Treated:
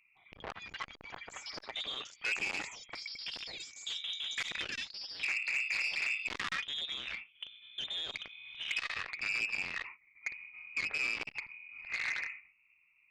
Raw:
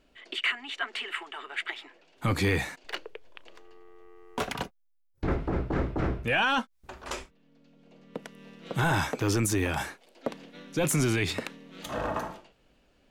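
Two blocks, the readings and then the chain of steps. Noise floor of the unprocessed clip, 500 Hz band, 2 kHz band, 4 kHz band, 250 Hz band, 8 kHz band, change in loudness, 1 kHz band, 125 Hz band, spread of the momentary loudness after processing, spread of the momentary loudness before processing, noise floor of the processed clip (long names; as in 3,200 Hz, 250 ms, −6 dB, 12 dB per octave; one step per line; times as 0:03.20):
−67 dBFS, −20.5 dB, −2.0 dB, −0.5 dB, −25.0 dB, −11.0 dB, −6.0 dB, −14.0 dB, −29.5 dB, 13 LU, 18 LU, −69 dBFS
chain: adaptive Wiener filter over 41 samples
high-pass filter 74 Hz 12 dB per octave
dynamic equaliser 690 Hz, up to +6 dB, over −45 dBFS, Q 0.91
brickwall limiter −24 dBFS, peak gain reduction 10.5 dB
voice inversion scrambler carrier 2,700 Hz
delay with pitch and tempo change per echo 168 ms, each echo +6 semitones, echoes 3, each echo −6 dB
saturating transformer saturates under 2,800 Hz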